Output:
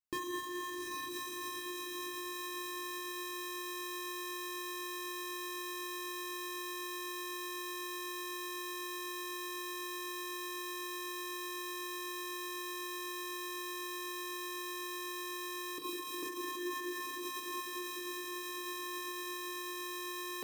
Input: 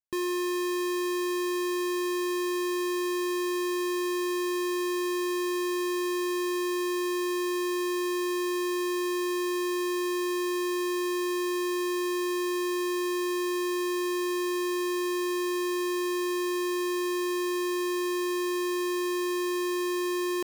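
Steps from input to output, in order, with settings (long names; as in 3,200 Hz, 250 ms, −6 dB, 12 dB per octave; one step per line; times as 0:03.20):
0:15.78–0:16.23: guitar amp tone stack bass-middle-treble 10-0-10
feedback delay with all-pass diffusion 811 ms, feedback 47%, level −4 dB
feedback delay network reverb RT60 3.3 s, high-frequency decay 0.45×, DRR −3.5 dB
brickwall limiter −26 dBFS, peak gain reduction 5 dB
reverb reduction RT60 0.69 s
level −4 dB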